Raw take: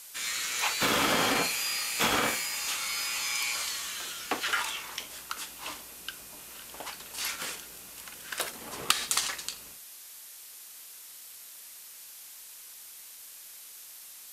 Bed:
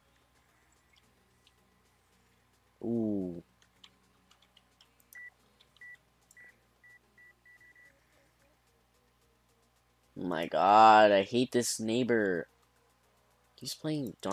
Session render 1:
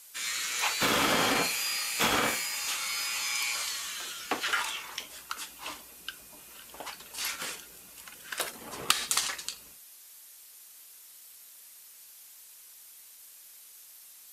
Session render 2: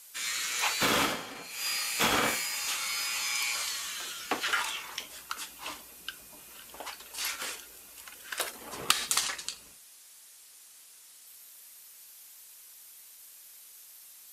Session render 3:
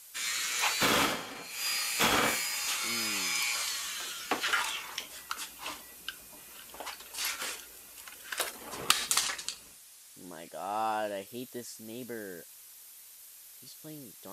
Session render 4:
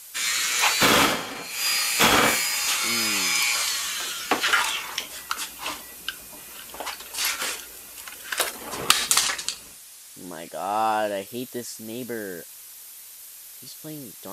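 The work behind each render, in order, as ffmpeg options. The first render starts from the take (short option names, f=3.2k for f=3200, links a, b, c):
-af "afftdn=nr=6:nf=-48"
-filter_complex "[0:a]asettb=1/sr,asplit=3[a][b][c];[a]atrim=end=6.784[d];[b]atrim=start=6.78:end=8.73,asetpts=PTS-STARTPTS,afade=t=in:d=0.004:c=qsin,afade=t=out:st=1.946:d=0.004:c=qsin,equalizer=f=160:t=o:w=0.79:g=-10.5[e];[c]atrim=start=8.726[f];[d][e]acrossfade=d=0.004:c1=hsin:c2=qsin[g];[g][f]acrossfade=d=0.004:c1=qsin:c2=hsin,asettb=1/sr,asplit=3[h][i][j];[h]atrim=end=9.244[k];[i]atrim=start=9.24:end=11.27,asetpts=PTS-STARTPTS,afade=t=in:d=0.004:c=qsin,afade=t=out:st=2.026:d=0.004:c=qsin,equalizer=f=13k:w=5.6:g=-13.5[l];[j]atrim=start=11.266[m];[k][l]acrossfade=d=0.004:c1=hsin:c2=qsin[n];[n][m]acrossfade=d=0.004:c1=qsin:c2=hsin,asplit=3[o][p][q];[o]atrim=end=1.27,asetpts=PTS-STARTPTS,afade=t=out:st=1.02:d=0.25:c=qua:silence=0.149624[r];[p]atrim=start=1.27:end=1.42,asetpts=PTS-STARTPTS,volume=-16.5dB[s];[q]atrim=start=1.42,asetpts=PTS-STARTPTS,afade=t=in:d=0.25:c=qua:silence=0.149624[t];[r][s][t]concat=n=3:v=0:a=1"
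-filter_complex "[1:a]volume=-12.5dB[a];[0:a][a]amix=inputs=2:normalize=0"
-af "volume=8.5dB,alimiter=limit=-2dB:level=0:latency=1"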